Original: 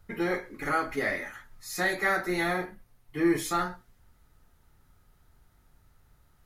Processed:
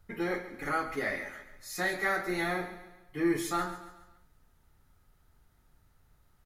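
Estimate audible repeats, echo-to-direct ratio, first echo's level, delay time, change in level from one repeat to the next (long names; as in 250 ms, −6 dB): 4, −12.0 dB, −13.0 dB, 139 ms, −7.0 dB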